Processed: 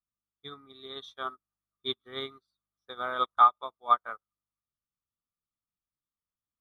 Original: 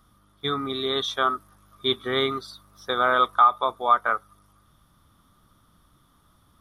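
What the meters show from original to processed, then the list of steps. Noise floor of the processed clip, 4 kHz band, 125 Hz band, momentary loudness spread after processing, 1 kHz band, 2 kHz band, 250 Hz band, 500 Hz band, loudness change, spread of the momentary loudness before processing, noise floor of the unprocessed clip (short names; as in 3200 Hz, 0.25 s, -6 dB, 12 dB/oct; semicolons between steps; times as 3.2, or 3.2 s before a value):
under -85 dBFS, -11.0 dB, under -15 dB, 24 LU, -5.5 dB, -13.0 dB, -15.5 dB, -13.0 dB, -4.5 dB, 13 LU, -62 dBFS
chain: dynamic EQ 4100 Hz, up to +4 dB, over -39 dBFS, Q 2.4; upward expander 2.5:1, over -39 dBFS; gain -1.5 dB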